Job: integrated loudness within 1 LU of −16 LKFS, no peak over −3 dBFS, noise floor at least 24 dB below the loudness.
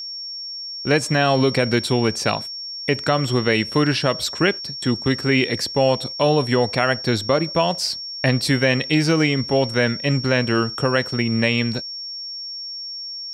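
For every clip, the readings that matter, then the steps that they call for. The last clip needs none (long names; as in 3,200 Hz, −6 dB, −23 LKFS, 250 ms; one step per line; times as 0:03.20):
interfering tone 5,500 Hz; level of the tone −29 dBFS; integrated loudness −20.5 LKFS; sample peak −4.5 dBFS; target loudness −16.0 LKFS
→ notch filter 5,500 Hz, Q 30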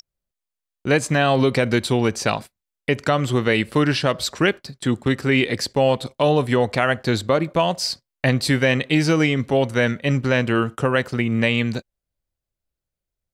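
interfering tone none found; integrated loudness −20.5 LKFS; sample peak −4.5 dBFS; target loudness −16.0 LKFS
→ level +4.5 dB
brickwall limiter −3 dBFS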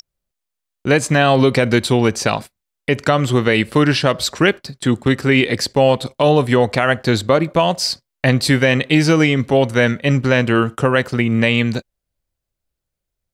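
integrated loudness −16.0 LKFS; sample peak −3.0 dBFS; background noise floor −80 dBFS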